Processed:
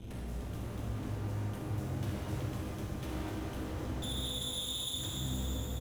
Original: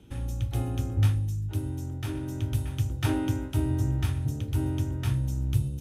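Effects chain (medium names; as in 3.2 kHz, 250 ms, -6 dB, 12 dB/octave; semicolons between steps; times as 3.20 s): bass shelf 130 Hz +11 dB; 4.02–4.94 s: frequency inversion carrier 3.6 kHz; early reflections 48 ms -11 dB, 64 ms -8.5 dB; compression 10:1, threshold -37 dBFS, peak gain reduction 26 dB; wavefolder -37.5 dBFS; Chebyshev shaper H 6 -15 dB, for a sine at -37.5 dBFS; pitch-shifted reverb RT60 3.7 s, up +12 st, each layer -8 dB, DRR -3 dB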